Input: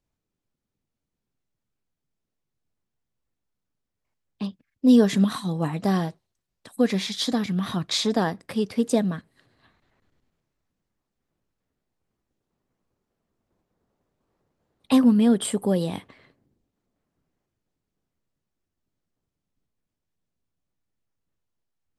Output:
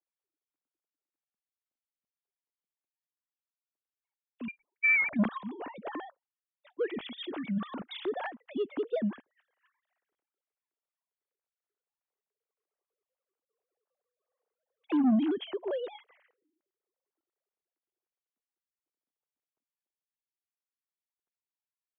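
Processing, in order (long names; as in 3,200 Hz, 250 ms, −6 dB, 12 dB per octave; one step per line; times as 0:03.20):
three sine waves on the formant tracks
soft clipping −14 dBFS, distortion −12 dB
0:04.48–0:05.14: voice inversion scrambler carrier 2,600 Hz
level −6.5 dB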